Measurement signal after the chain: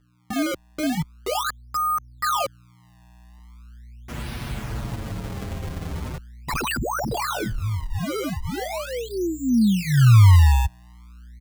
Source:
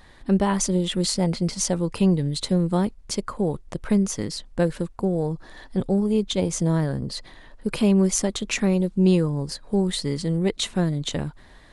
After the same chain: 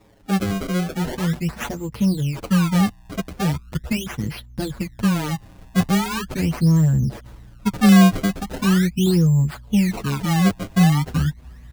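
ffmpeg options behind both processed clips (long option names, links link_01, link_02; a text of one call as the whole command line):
ffmpeg -i in.wav -filter_complex "[0:a]highpass=61,aeval=exprs='val(0)+0.002*(sin(2*PI*60*n/s)+sin(2*PI*2*60*n/s)/2+sin(2*PI*3*60*n/s)/3+sin(2*PI*4*60*n/s)/4+sin(2*PI*5*60*n/s)/5)':channel_layout=same,asubboost=boost=6.5:cutoff=180,acrusher=samples=28:mix=1:aa=0.000001:lfo=1:lforange=44.8:lforate=0.4,asplit=2[link_01][link_02];[link_02]adelay=6.9,afreqshift=-0.39[link_03];[link_01][link_03]amix=inputs=2:normalize=1" out.wav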